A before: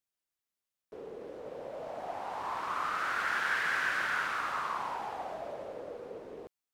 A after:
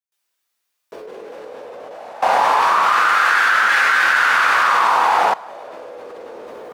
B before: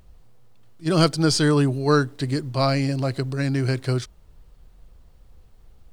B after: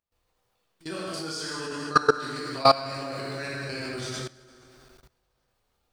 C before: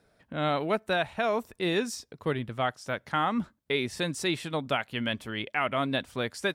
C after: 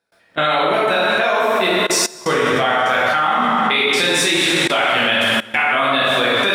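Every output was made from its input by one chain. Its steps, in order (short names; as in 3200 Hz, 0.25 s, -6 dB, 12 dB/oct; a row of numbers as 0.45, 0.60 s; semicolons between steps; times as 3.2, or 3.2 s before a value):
LPF 1600 Hz 6 dB/oct; tilt +4.5 dB/oct; resonator 110 Hz, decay 1 s, harmonics all, mix 50%; step gate ".x.xxxxx.xxxxx." 126 bpm -24 dB; thinning echo 0.156 s, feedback 68%, high-pass 200 Hz, level -21.5 dB; plate-style reverb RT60 1.8 s, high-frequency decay 0.75×, DRR -8 dB; level quantiser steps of 20 dB; normalise peaks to -3 dBFS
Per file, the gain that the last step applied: +25.5, +6.0, +24.0 dB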